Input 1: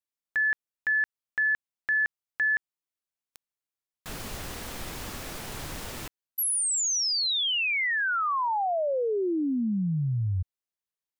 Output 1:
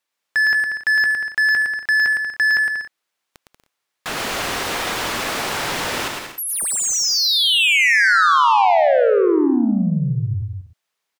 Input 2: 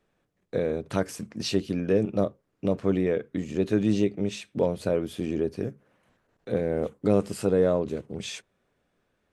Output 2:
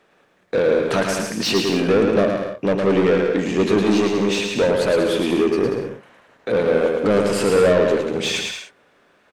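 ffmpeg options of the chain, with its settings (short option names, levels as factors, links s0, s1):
-filter_complex "[0:a]asplit=2[s0][s1];[s1]highpass=f=720:p=1,volume=17.8,asoftclip=type=tanh:threshold=0.355[s2];[s0][s2]amix=inputs=2:normalize=0,lowpass=f=3100:p=1,volume=0.501,aecho=1:1:110|187|240.9|278.6|305:0.631|0.398|0.251|0.158|0.1"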